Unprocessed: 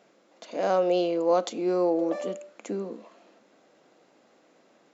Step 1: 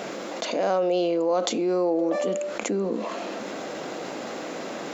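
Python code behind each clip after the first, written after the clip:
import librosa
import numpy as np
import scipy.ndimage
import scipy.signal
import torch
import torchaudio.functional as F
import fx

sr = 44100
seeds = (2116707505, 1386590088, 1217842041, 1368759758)

y = fx.env_flatten(x, sr, amount_pct=70)
y = F.gain(torch.from_numpy(y), -2.0).numpy()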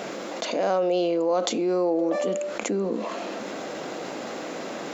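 y = x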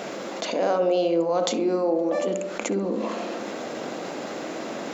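y = fx.echo_filtered(x, sr, ms=65, feedback_pct=72, hz=980.0, wet_db=-6)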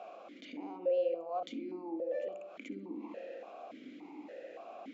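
y = fx.vowel_held(x, sr, hz=3.5)
y = F.gain(torch.from_numpy(y), -6.5).numpy()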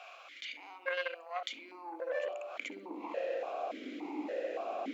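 y = fx.cheby_harmonics(x, sr, harmonics=(2, 3, 4), levels_db=(-16, -18, -24), full_scale_db=-23.0)
y = fx.filter_sweep_highpass(y, sr, from_hz=1800.0, to_hz=310.0, start_s=1.15, end_s=4.2, q=1.0)
y = F.gain(torch.from_numpy(y), 13.5).numpy()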